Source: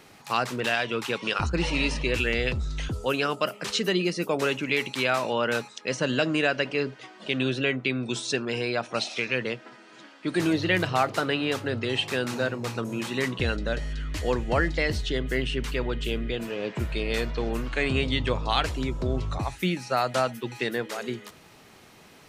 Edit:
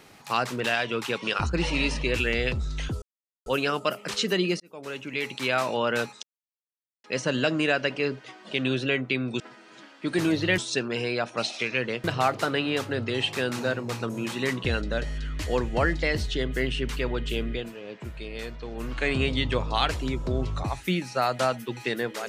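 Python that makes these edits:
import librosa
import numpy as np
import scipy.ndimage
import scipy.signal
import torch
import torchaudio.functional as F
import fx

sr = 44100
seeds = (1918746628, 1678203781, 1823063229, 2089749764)

y = fx.edit(x, sr, fx.insert_silence(at_s=3.02, length_s=0.44),
    fx.fade_in_span(start_s=4.16, length_s=1.0),
    fx.insert_silence(at_s=5.79, length_s=0.81),
    fx.move(start_s=9.61, length_s=1.18, to_s=8.15),
    fx.fade_down_up(start_s=16.27, length_s=1.43, db=-8.5, fade_s=0.21), tone=tone)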